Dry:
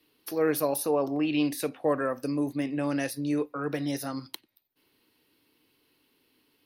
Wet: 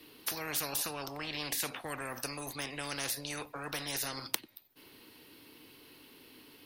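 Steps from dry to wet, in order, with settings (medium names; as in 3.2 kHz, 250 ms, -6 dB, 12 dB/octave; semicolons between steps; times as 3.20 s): spectrum-flattening compressor 4:1; trim +4.5 dB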